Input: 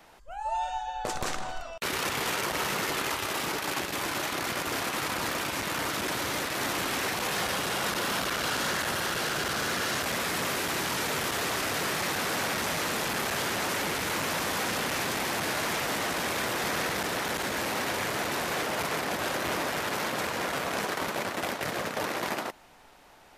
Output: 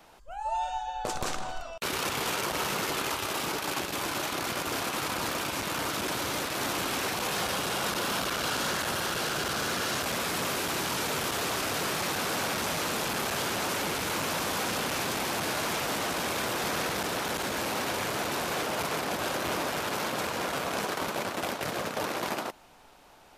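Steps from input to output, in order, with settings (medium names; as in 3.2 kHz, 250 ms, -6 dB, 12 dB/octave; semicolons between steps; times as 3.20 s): peaking EQ 1.9 kHz -4.5 dB 0.41 oct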